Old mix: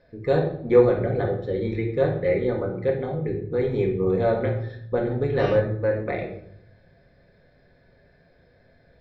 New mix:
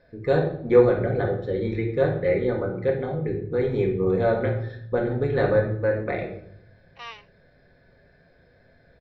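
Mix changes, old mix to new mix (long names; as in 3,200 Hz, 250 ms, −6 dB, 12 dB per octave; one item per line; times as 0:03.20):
first voice: add parametric band 1,500 Hz +4 dB 0.31 octaves
second voice: entry +1.60 s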